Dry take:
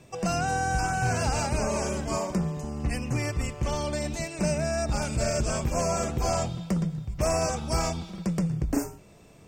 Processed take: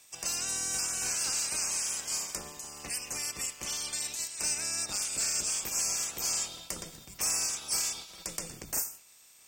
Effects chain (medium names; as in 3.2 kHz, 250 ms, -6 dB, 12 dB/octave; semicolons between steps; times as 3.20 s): spectral peaks clipped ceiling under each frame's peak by 21 dB; pre-emphasis filter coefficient 0.9; hard clipper -20.5 dBFS, distortion -30 dB